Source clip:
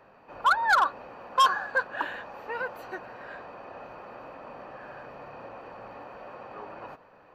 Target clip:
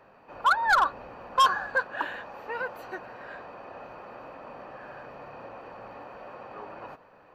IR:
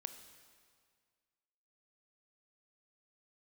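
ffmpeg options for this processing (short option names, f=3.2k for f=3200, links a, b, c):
-filter_complex "[0:a]asettb=1/sr,asplit=3[a][b][c];[a]atrim=end=0.664[d];[b]atrim=start=0.66:end=1.77,asetpts=PTS-STARTPTS,afade=t=in:d=0.004:c=qsin,afade=t=out:st=1.106:d=0.004:c=qsin,lowshelf=f=120:g=10.5[e];[c]atrim=start=1.766[f];[d][e]acrossfade=d=0.004:c1=hsin:c2=qsin[g];[g][f]acrossfade=d=0.004:c1=qsin:c2=hsin"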